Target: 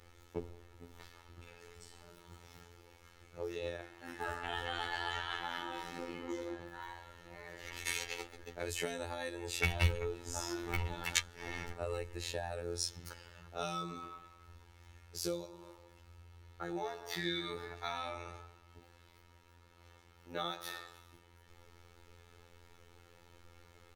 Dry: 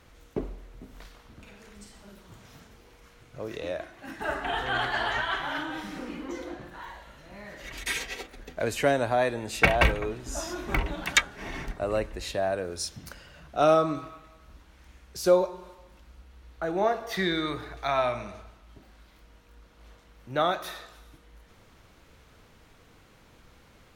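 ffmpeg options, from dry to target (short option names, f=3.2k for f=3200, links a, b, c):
-filter_complex "[0:a]aecho=1:1:2.3:0.6,acrossover=split=180|3000[a][b][c];[b]acompressor=threshold=-32dB:ratio=6[d];[a][d][c]amix=inputs=3:normalize=0,afftfilt=real='hypot(re,im)*cos(PI*b)':imag='0':win_size=2048:overlap=0.75,volume=-2.5dB"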